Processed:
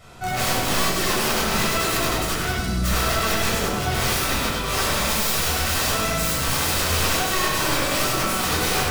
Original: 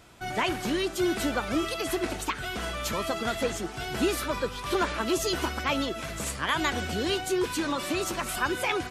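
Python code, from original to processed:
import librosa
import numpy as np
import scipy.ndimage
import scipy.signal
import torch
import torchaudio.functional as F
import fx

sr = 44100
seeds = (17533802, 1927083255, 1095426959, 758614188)

y = fx.spec_box(x, sr, start_s=2.55, length_s=0.29, low_hz=330.0, high_hz=3700.0, gain_db=-12)
y = fx.high_shelf(y, sr, hz=2600.0, db=7.0, at=(4.92, 7.03))
y = (np.mod(10.0 ** (26.0 / 20.0) * y + 1.0, 2.0) - 1.0) / 10.0 ** (26.0 / 20.0)
y = fx.echo_feedback(y, sr, ms=98, feedback_pct=48, wet_db=-5)
y = fx.room_shoebox(y, sr, seeds[0], volume_m3=950.0, walls='furnished', distance_m=6.6)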